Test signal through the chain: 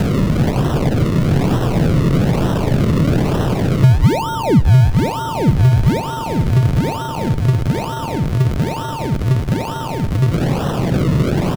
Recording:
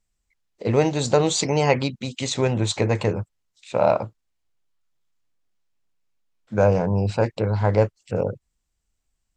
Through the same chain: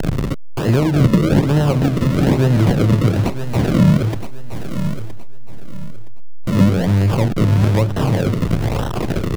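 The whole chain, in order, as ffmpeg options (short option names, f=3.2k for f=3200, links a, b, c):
-filter_complex "[0:a]aeval=exprs='val(0)+0.5*0.0708*sgn(val(0))':c=same,highshelf=f=4k:g=10,acompressor=threshold=-30dB:ratio=1.5,aecho=1:1:3.2:0.41,acrusher=samples=38:mix=1:aa=0.000001:lfo=1:lforange=38:lforate=1.1,equalizer=f=140:t=o:w=1.1:g=11.5,asplit=2[a][b];[b]aecho=0:1:968|1936|2904:0.237|0.064|0.0173[c];[a][c]amix=inputs=2:normalize=0,acrossover=split=580|5600[d][e][f];[d]acompressor=threshold=-13dB:ratio=4[g];[e]acompressor=threshold=-31dB:ratio=4[h];[f]acompressor=threshold=-45dB:ratio=4[i];[g][h][i]amix=inputs=3:normalize=0,volume=5.5dB"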